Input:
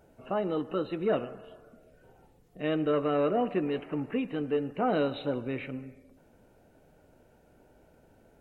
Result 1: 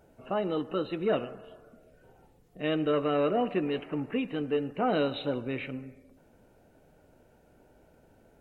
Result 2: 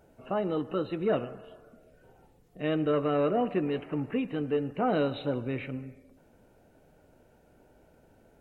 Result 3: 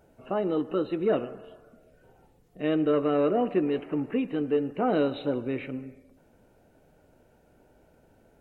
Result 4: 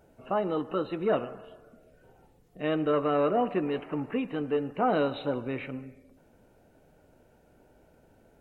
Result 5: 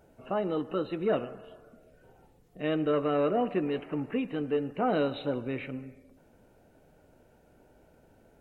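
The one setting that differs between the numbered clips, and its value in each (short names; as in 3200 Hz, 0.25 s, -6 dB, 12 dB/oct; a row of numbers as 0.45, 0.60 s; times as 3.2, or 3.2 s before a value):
dynamic EQ, frequency: 3300, 110, 340, 1000, 9400 Hz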